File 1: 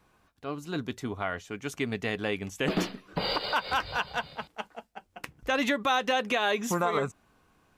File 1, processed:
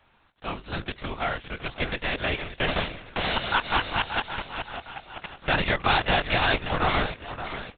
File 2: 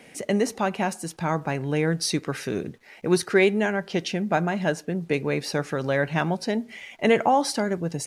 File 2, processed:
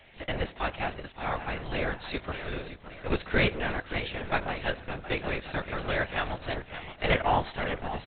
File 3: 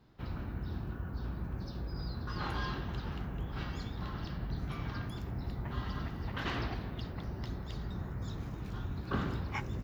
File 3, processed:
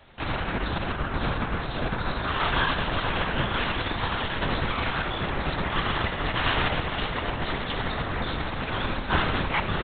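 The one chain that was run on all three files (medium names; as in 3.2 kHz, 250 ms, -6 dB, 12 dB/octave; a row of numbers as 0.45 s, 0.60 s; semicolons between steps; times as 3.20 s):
formants flattened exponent 0.6; peaking EQ 180 Hz -14.5 dB 0.95 oct; feedback delay 571 ms, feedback 43%, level -11 dB; LPC vocoder at 8 kHz whisper; peak normalisation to -9 dBFS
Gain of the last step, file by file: +4.5 dB, -3.5 dB, +12.5 dB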